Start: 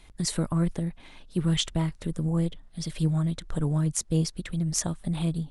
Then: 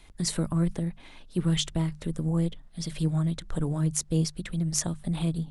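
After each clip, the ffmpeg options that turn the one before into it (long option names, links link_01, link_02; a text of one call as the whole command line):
ffmpeg -i in.wav -filter_complex "[0:a]bandreject=frequency=50:width_type=h:width=6,bandreject=frequency=100:width_type=h:width=6,bandreject=frequency=150:width_type=h:width=6,bandreject=frequency=200:width_type=h:width=6,acrossover=split=480|3000[link_01][link_02][link_03];[link_02]acompressor=threshold=-37dB:ratio=6[link_04];[link_01][link_04][link_03]amix=inputs=3:normalize=0" out.wav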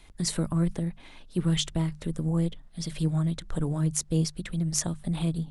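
ffmpeg -i in.wav -af anull out.wav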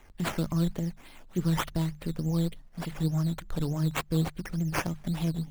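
ffmpeg -i in.wav -af "acrusher=samples=9:mix=1:aa=0.000001:lfo=1:lforange=5.4:lforate=3.4,volume=-1.5dB" out.wav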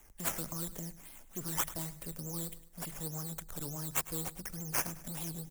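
ffmpeg -i in.wav -filter_complex "[0:a]acrossover=split=390|1800[link_01][link_02][link_03];[link_01]asoftclip=type=tanh:threshold=-35.5dB[link_04];[link_04][link_02][link_03]amix=inputs=3:normalize=0,aexciter=amount=3.3:drive=8:freq=5700,aecho=1:1:104|208|312:0.158|0.0571|0.0205,volume=-6.5dB" out.wav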